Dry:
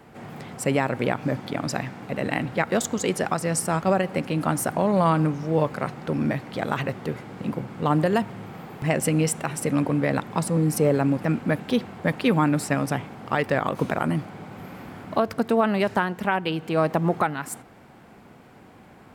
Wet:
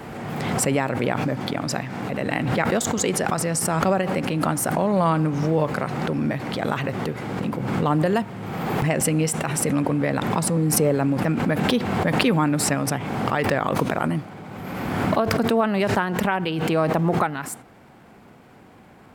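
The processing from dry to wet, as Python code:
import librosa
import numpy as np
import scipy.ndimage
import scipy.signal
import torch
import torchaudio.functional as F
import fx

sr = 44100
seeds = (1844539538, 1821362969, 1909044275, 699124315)

y = fx.pre_swell(x, sr, db_per_s=27.0)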